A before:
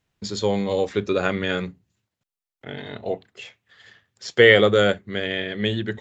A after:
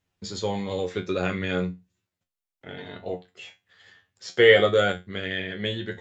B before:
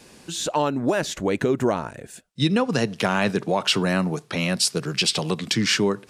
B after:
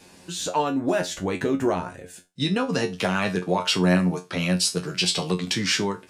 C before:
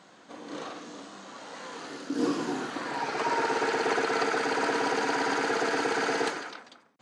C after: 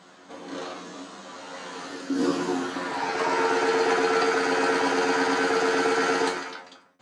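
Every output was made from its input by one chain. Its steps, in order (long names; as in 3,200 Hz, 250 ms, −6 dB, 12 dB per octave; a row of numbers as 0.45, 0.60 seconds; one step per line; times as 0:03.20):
tuned comb filter 90 Hz, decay 0.21 s, harmonics all, mix 90%
loudness normalisation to −24 LKFS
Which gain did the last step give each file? +3.0, +5.5, +10.5 decibels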